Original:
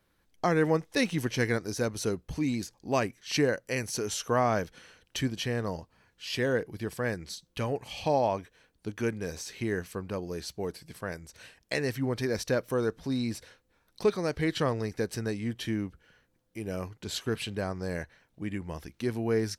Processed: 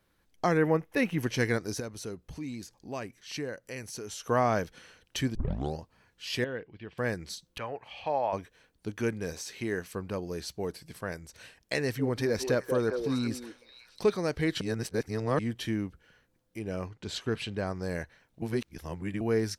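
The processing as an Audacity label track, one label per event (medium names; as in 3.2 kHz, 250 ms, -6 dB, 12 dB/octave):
0.570000	1.230000	high-order bell 5.7 kHz -11.5 dB
1.800000	4.260000	compression 1.5:1, threshold -50 dBFS
5.350000	5.350000	tape start 0.43 s
6.440000	6.980000	four-pole ladder low-pass 3.4 kHz, resonance 50%
7.580000	8.330000	three-band isolator lows -13 dB, under 570 Hz, highs -23 dB, over 3.1 kHz
9.330000	9.940000	bass shelf 150 Hz -7.5 dB
11.800000	14.030000	repeats whose band climbs or falls 188 ms, band-pass from 440 Hz, each repeat 1.4 oct, level -3.5 dB
14.610000	15.390000	reverse
16.590000	17.670000	distance through air 55 m
18.420000	19.210000	reverse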